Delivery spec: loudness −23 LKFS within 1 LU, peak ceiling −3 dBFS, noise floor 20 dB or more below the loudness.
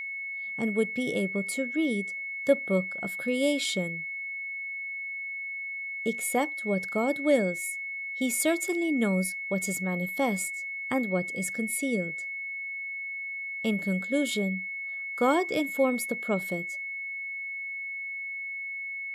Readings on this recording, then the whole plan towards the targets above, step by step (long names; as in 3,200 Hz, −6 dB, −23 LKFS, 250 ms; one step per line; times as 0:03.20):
interfering tone 2,200 Hz; level of the tone −33 dBFS; integrated loudness −29.5 LKFS; sample peak −10.0 dBFS; target loudness −23.0 LKFS
→ notch filter 2,200 Hz, Q 30
level +6.5 dB